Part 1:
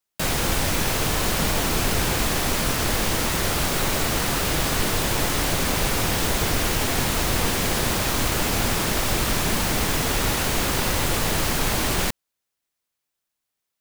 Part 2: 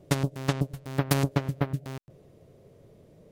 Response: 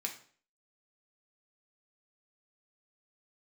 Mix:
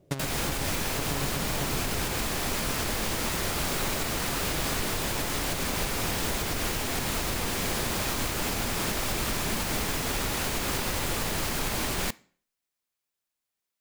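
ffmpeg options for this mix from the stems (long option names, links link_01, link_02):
-filter_complex "[0:a]volume=-5.5dB,asplit=2[link_01][link_02];[link_02]volume=-14dB[link_03];[1:a]volume=-6.5dB[link_04];[2:a]atrim=start_sample=2205[link_05];[link_03][link_05]afir=irnorm=-1:irlink=0[link_06];[link_01][link_04][link_06]amix=inputs=3:normalize=0,alimiter=limit=-18.5dB:level=0:latency=1:release=148"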